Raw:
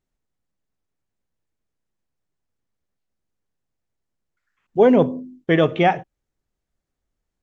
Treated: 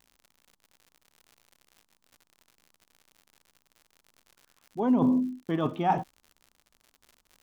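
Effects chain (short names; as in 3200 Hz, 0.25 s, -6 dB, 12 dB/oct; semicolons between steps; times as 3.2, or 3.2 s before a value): reverse; compressor 8:1, threshold -25 dBFS, peak gain reduction 15.5 dB; reverse; ten-band EQ 125 Hz -4 dB, 250 Hz +8 dB, 500 Hz -10 dB, 1000 Hz +11 dB, 2000 Hz -12 dB; crackle 95/s -44 dBFS; gain +1.5 dB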